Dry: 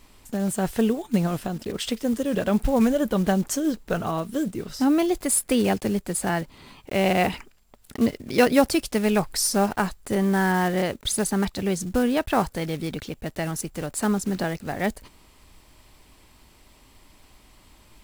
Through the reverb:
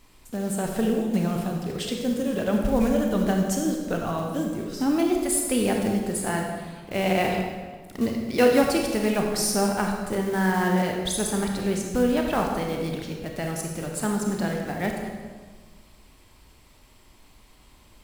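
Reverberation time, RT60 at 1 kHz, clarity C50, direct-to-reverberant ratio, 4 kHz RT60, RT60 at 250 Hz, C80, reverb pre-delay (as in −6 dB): 1.5 s, 1.4 s, 2.5 dB, 1.0 dB, 1.2 s, 1.8 s, 4.5 dB, 27 ms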